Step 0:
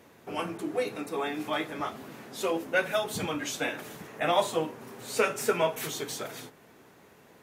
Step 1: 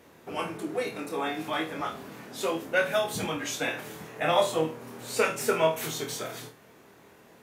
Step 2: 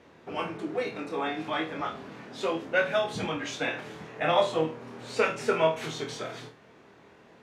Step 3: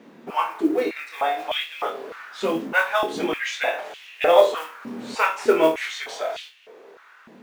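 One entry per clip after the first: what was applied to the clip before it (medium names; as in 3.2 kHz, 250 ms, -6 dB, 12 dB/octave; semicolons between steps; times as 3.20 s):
flutter echo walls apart 4.3 m, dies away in 0.26 s
low-pass 4.6 kHz 12 dB/octave
modulation noise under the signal 25 dB; step-sequenced high-pass 3.3 Hz 220–2800 Hz; trim +3 dB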